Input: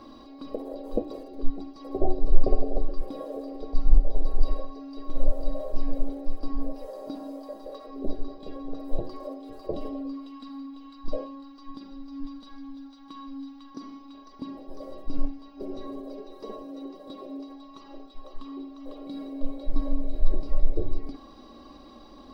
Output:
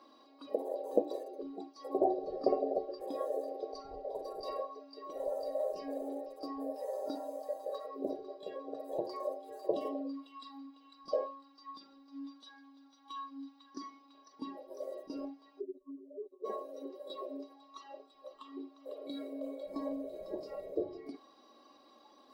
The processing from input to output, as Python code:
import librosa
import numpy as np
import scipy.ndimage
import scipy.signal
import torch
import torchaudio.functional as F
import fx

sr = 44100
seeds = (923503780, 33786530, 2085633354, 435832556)

y = fx.spec_expand(x, sr, power=2.9, at=(15.59, 16.44), fade=0.02)
y = fx.noise_reduce_blind(y, sr, reduce_db=12)
y = scipy.signal.sosfilt(scipy.signal.butter(2, 420.0, 'highpass', fs=sr, output='sos'), y)
y = y * 10.0 ** (2.5 / 20.0)